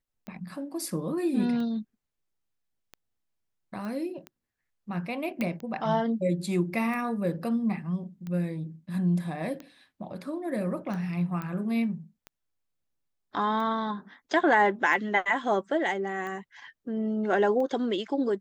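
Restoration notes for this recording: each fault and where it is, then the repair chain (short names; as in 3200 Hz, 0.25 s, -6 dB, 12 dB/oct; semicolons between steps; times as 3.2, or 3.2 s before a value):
tick 45 rpm -26 dBFS
3.85 pop -27 dBFS
5.41 pop -17 dBFS
11.42 pop -22 dBFS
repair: de-click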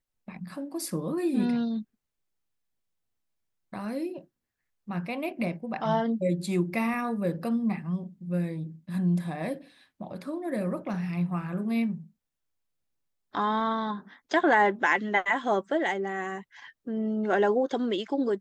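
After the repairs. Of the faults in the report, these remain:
none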